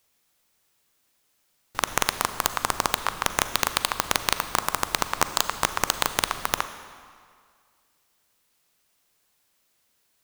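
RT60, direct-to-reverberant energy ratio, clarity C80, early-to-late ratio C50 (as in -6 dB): 2.1 s, 10.5 dB, 12.5 dB, 11.5 dB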